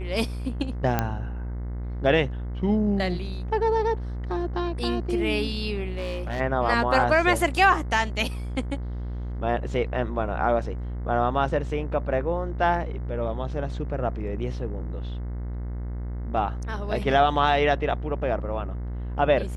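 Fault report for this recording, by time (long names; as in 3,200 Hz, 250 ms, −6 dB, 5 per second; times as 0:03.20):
mains buzz 60 Hz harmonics 36 −31 dBFS
0:00.99: click −9 dBFS
0:05.88–0:06.41: clipping −25 dBFS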